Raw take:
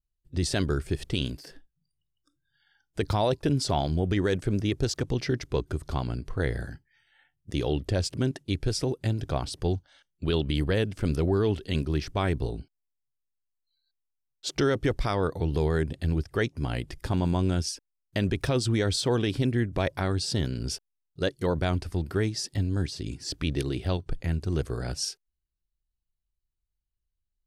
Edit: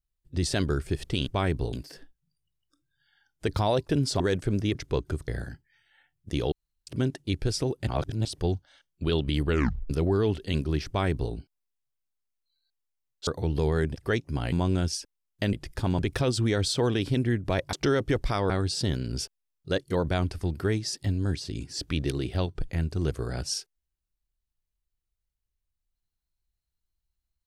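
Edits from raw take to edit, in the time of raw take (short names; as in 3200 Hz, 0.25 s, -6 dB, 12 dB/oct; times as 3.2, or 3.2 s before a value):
3.74–4.2 cut
4.75–5.36 cut
5.89–6.49 cut
7.73–8.08 room tone
9.08–9.46 reverse
10.67 tape stop 0.44 s
12.08–12.54 copy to 1.27
14.48–15.25 move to 20.01
15.94–16.24 cut
16.8–17.26 move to 18.27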